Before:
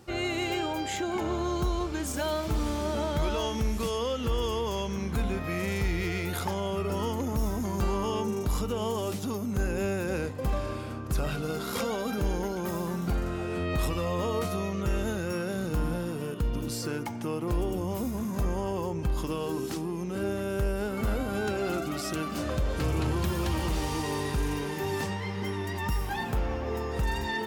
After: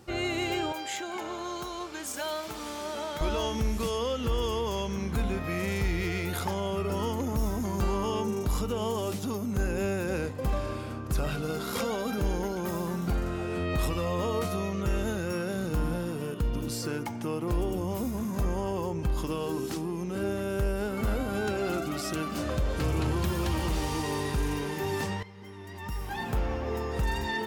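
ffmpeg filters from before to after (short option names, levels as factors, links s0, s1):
-filter_complex "[0:a]asettb=1/sr,asplit=3[s0][s1][s2];[s0]atrim=end=0.724[s3];[s1]atrim=start=0.72:end=3.21,asetpts=PTS-STARTPTS,afade=t=in:d=0.004:c=qsin,afade=t=out:st=2.486:d=0.004:c=qsin,highpass=f=760:p=1[s4];[s2]atrim=start=3.206[s5];[s3][s4]acrossfade=d=0.004:c1=hsin:c2=qsin[s6];[s6][s5]acrossfade=d=0.004:c1=qsin:c2=hsin,asplit=2[s7][s8];[s7]atrim=end=25.23,asetpts=PTS-STARTPTS,afade=t=out:st=25.226:d=0.004:c=hsin:silence=0.177828[s9];[s8]atrim=start=25.23,asetpts=PTS-STARTPTS,afade=t=in:d=1.12:c=qua:silence=0.177828[s10];[s9][s10]concat=n=2:v=0:a=1"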